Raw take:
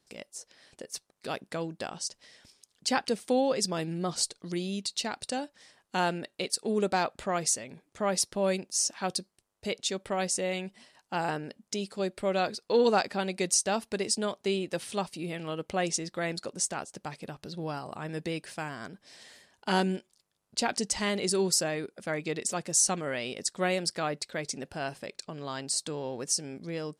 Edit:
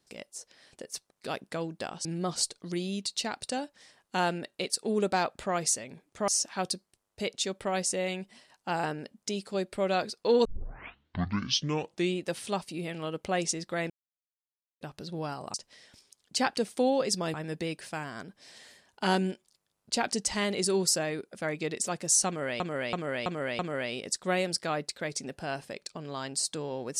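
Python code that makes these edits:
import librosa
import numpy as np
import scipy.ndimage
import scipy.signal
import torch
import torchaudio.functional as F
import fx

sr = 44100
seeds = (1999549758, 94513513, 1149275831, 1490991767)

y = fx.edit(x, sr, fx.move(start_s=2.05, length_s=1.8, to_s=17.99),
    fx.cut(start_s=8.08, length_s=0.65),
    fx.tape_start(start_s=12.9, length_s=1.76),
    fx.silence(start_s=16.35, length_s=0.91),
    fx.repeat(start_s=22.92, length_s=0.33, count=5), tone=tone)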